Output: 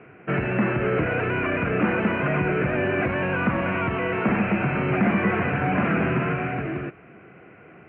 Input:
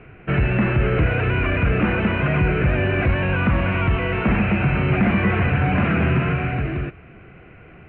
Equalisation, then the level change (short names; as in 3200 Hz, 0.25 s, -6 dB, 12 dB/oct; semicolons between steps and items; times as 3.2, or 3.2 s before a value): BPF 190–2400 Hz; air absorption 57 m; 0.0 dB